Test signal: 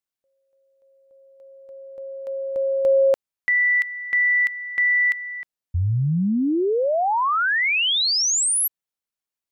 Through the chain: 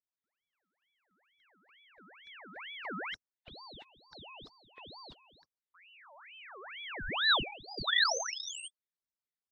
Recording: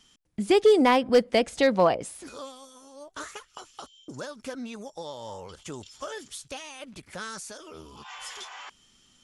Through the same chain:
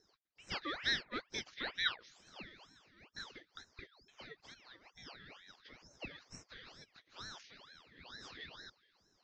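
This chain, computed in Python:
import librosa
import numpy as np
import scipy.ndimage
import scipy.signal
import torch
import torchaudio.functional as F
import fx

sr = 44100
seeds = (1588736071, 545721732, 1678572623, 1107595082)

y = fx.freq_compress(x, sr, knee_hz=1500.0, ratio=1.5)
y = fx.double_bandpass(y, sr, hz=1800.0, octaves=1.2)
y = fx.ring_lfo(y, sr, carrier_hz=1800.0, swing_pct=60, hz=2.2)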